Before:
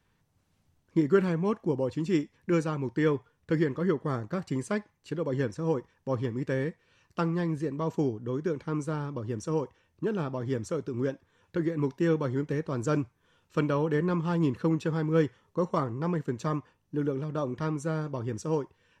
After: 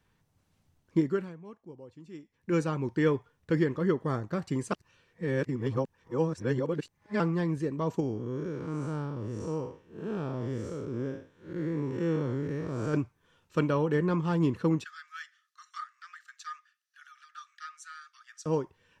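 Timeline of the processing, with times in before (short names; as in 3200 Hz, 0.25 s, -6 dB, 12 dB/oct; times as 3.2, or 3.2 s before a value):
0.98–2.59 dip -19 dB, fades 0.44 s quadratic
4.72–7.2 reverse
8–12.94 time blur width 0.183 s
14.84–18.46 rippled Chebyshev high-pass 1200 Hz, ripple 6 dB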